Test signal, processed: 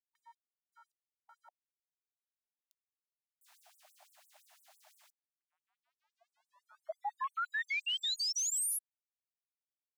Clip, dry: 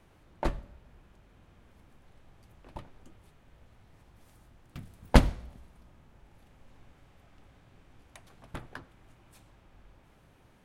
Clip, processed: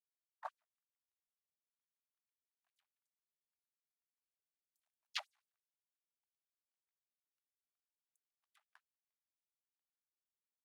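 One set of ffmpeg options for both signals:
-af "aeval=exprs='sgn(val(0))*max(abs(val(0))-0.00376,0)':c=same,afwtdn=0.0141,afftfilt=real='re*gte(b*sr/1024,590*pow(7900/590,0.5+0.5*sin(2*PI*5.9*pts/sr)))':imag='im*gte(b*sr/1024,590*pow(7900/590,0.5+0.5*sin(2*PI*5.9*pts/sr)))':win_size=1024:overlap=0.75,volume=-6dB"

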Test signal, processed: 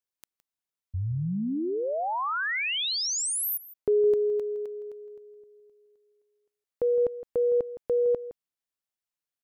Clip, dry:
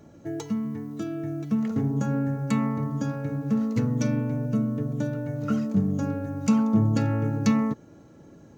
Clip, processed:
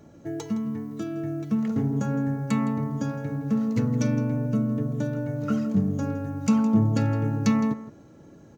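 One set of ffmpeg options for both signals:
-filter_complex "[0:a]asplit=2[a][b];[b]adelay=163.3,volume=-14dB,highshelf=f=4k:g=-3.67[c];[a][c]amix=inputs=2:normalize=0"

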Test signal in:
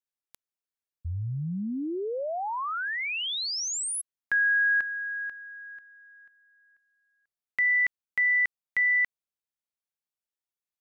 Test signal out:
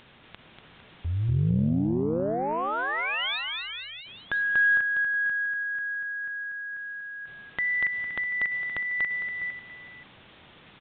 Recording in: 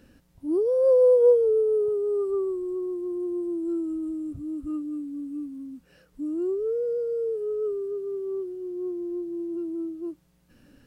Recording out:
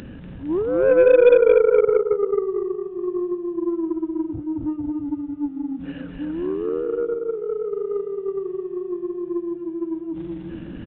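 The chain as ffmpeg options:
-af "equalizer=f=140:t=o:w=2.3:g=9.5,acompressor=mode=upward:threshold=-23dB:ratio=4:attack=0.72:release=30:knee=2.83:detection=peak,aecho=1:1:240|456|650.4|825.4|982.8:0.631|0.398|0.251|0.158|0.1,aeval=exprs='0.668*(cos(1*acos(clip(val(0)/0.668,-1,1)))-cos(1*PI/2))+0.0266*(cos(2*acos(clip(val(0)/0.668,-1,1)))-cos(2*PI/2))+0.0473*(cos(5*acos(clip(val(0)/0.668,-1,1)))-cos(5*PI/2))+0.075*(cos(7*acos(clip(val(0)/0.668,-1,1)))-cos(7*PI/2))':c=same,aresample=8000,aresample=44100"

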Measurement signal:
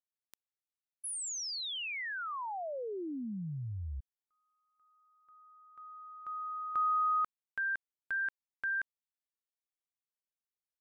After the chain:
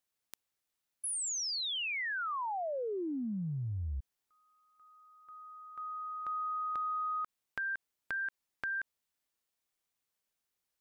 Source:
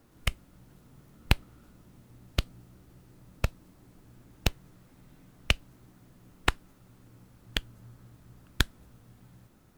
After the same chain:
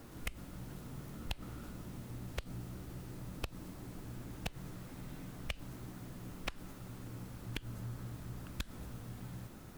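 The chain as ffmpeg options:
-af "asoftclip=type=tanh:threshold=-10dB,acompressor=threshold=-43dB:ratio=10:attack=2.2:release=100:knee=6:detection=peak,volume=9dB"

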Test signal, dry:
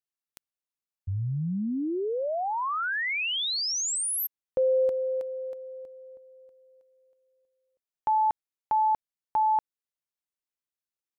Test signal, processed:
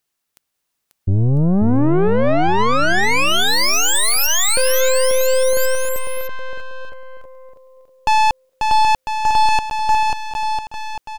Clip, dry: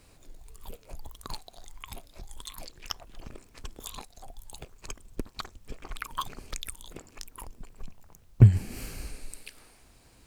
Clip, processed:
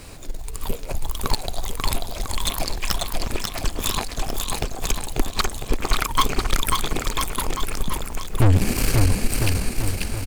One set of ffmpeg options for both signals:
-af "aeval=exprs='(tanh(50.1*val(0)+0.7)-tanh(0.7))/50.1':c=same,aecho=1:1:540|999|1389|1721|2003:0.631|0.398|0.251|0.158|0.1,alimiter=level_in=26.5dB:limit=-1dB:release=50:level=0:latency=1,volume=-5.5dB"

